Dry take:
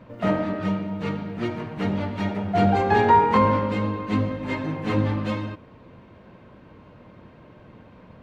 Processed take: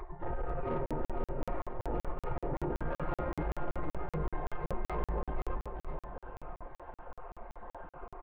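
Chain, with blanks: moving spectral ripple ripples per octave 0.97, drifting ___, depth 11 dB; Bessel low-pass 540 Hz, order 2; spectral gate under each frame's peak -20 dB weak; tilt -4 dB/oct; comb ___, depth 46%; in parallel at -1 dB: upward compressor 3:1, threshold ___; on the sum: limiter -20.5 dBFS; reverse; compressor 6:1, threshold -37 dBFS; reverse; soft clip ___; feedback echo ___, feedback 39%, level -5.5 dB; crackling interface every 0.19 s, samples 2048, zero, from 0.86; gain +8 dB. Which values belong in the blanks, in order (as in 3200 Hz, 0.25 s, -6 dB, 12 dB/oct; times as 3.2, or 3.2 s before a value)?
-1.2 Hz, 5.7 ms, -51 dBFS, -36 dBFS, 0.496 s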